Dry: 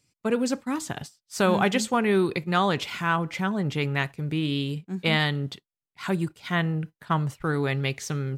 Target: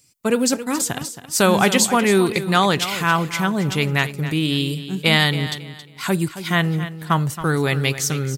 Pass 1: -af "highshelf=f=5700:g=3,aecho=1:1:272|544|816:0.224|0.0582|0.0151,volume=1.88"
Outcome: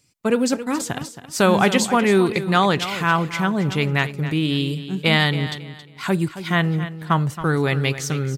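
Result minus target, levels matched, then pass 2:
8 kHz band -6.5 dB
-af "highshelf=f=5700:g=14.5,aecho=1:1:272|544|816:0.224|0.0582|0.0151,volume=1.88"

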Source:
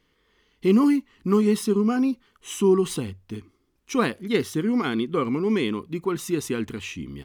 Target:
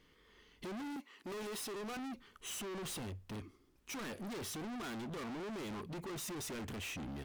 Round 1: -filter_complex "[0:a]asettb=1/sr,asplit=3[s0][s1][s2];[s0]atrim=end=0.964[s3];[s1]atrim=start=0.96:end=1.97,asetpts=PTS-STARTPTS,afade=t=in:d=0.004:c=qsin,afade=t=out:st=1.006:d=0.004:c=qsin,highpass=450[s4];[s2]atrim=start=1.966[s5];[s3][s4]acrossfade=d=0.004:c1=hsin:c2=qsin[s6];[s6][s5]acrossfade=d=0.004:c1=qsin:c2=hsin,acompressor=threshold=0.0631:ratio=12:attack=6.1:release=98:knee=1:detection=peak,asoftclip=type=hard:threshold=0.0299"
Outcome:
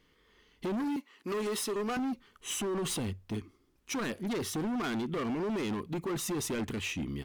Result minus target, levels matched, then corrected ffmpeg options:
hard clipper: distortion -5 dB
-filter_complex "[0:a]asettb=1/sr,asplit=3[s0][s1][s2];[s0]atrim=end=0.964[s3];[s1]atrim=start=0.96:end=1.97,asetpts=PTS-STARTPTS,afade=t=in:d=0.004:c=qsin,afade=t=out:st=1.006:d=0.004:c=qsin,highpass=450[s4];[s2]atrim=start=1.966[s5];[s3][s4]acrossfade=d=0.004:c1=hsin:c2=qsin[s6];[s6][s5]acrossfade=d=0.004:c1=qsin:c2=hsin,acompressor=threshold=0.0631:ratio=12:attack=6.1:release=98:knee=1:detection=peak,asoftclip=type=hard:threshold=0.00794"

